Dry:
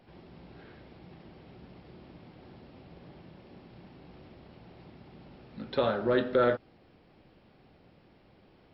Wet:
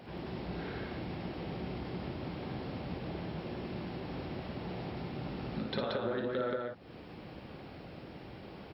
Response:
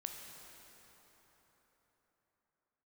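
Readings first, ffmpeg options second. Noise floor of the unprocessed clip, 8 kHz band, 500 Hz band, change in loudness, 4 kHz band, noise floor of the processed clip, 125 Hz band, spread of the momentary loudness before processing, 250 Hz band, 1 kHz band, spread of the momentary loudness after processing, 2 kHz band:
-61 dBFS, no reading, -6.0 dB, -11.0 dB, +0.5 dB, -50 dBFS, +5.5 dB, 10 LU, +0.5 dB, -3.5 dB, 14 LU, -3.5 dB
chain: -filter_complex "[0:a]highpass=44,acompressor=threshold=0.00501:ratio=5,asplit=2[s0][s1];[s1]aecho=0:1:55.39|177.8:0.562|0.794[s2];[s0][s2]amix=inputs=2:normalize=0,volume=2.99"

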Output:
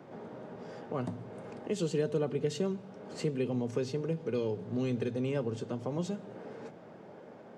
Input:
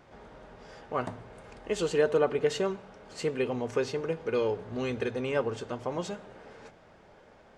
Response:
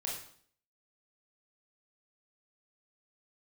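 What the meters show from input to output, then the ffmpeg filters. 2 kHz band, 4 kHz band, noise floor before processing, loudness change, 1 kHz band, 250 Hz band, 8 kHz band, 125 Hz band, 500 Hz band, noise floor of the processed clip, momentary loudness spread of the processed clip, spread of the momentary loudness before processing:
-10.0 dB, -5.5 dB, -57 dBFS, -4.0 dB, -8.5 dB, +1.5 dB, -4.0 dB, +4.0 dB, -5.0 dB, -51 dBFS, 15 LU, 23 LU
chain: -filter_complex "[0:a]highpass=f=110:w=0.5412,highpass=f=110:w=1.3066,equalizer=f=260:w=0.31:g=13.5,acrossover=split=180|3000[s0][s1][s2];[s1]acompressor=threshold=0.0112:ratio=2[s3];[s0][s3][s2]amix=inputs=3:normalize=0,volume=0.631"

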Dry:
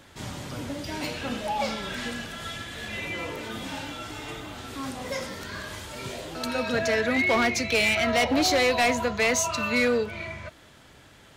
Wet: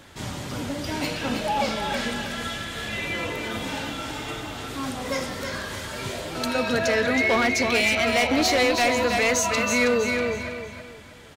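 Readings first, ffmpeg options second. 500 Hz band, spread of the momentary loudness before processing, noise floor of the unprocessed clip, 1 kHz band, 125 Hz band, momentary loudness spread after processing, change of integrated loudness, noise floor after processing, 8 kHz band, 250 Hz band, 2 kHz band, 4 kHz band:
+2.5 dB, 15 LU, -53 dBFS, +3.0 dB, +3.0 dB, 12 LU, +2.5 dB, -43 dBFS, +2.5 dB, +2.5 dB, +2.5 dB, +2.5 dB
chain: -af "aecho=1:1:321|642|963|1284:0.473|0.156|0.0515|0.017,alimiter=limit=0.133:level=0:latency=1:release=95,volume=1.5"

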